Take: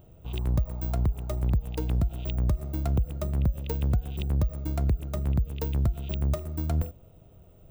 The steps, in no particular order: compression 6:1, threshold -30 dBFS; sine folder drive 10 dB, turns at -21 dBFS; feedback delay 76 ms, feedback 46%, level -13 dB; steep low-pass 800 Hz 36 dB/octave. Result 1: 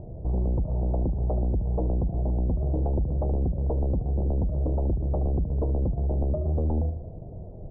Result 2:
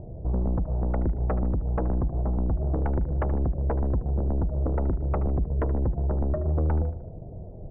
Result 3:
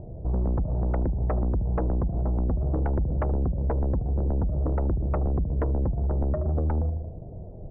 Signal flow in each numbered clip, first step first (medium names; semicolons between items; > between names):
compression > feedback delay > sine folder > steep low-pass; steep low-pass > compression > sine folder > feedback delay; feedback delay > compression > steep low-pass > sine folder